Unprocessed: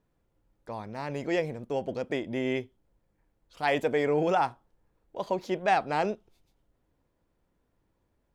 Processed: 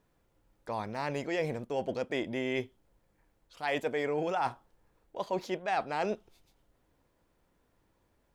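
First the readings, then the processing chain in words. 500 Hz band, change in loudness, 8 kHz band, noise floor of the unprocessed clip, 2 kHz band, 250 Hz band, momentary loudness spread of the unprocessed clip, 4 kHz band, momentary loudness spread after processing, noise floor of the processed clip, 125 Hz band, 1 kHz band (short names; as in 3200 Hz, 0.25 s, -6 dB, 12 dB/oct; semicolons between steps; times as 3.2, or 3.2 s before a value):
-4.0 dB, -4.5 dB, n/a, -75 dBFS, -3.0 dB, -4.0 dB, 14 LU, -2.0 dB, 8 LU, -73 dBFS, -4.0 dB, -5.0 dB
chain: low shelf 490 Hz -5.5 dB; reverse; compressor 5:1, threshold -35 dBFS, peak gain reduction 13 dB; reverse; gain +6 dB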